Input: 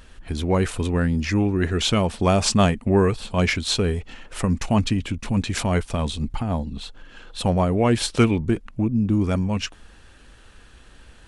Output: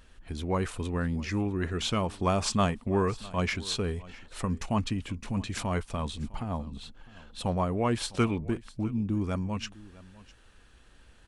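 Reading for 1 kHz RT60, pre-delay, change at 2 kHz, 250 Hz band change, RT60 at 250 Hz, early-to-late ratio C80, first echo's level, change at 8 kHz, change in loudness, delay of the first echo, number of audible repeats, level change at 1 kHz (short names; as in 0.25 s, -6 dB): none, none, -8.5 dB, -9.0 dB, none, none, -20.5 dB, -9.0 dB, -8.5 dB, 0.655 s, 1, -5.5 dB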